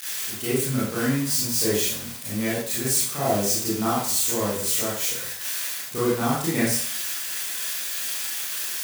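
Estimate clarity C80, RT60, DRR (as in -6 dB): 5.0 dB, 0.55 s, -9.5 dB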